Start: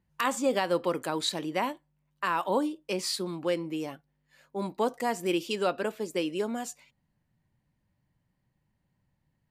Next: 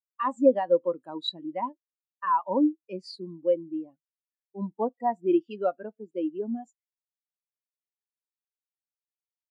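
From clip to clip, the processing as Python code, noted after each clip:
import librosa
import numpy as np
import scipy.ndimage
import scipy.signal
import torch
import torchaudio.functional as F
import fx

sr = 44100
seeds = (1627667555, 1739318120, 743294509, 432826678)

y = fx.dynamic_eq(x, sr, hz=430.0, q=1.8, threshold_db=-40.0, ratio=4.0, max_db=-5)
y = fx.spectral_expand(y, sr, expansion=2.5)
y = y * 10.0 ** (6.0 / 20.0)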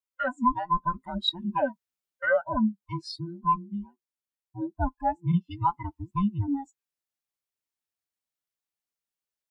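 y = fx.band_invert(x, sr, width_hz=500)
y = fx.rider(y, sr, range_db=5, speed_s=0.5)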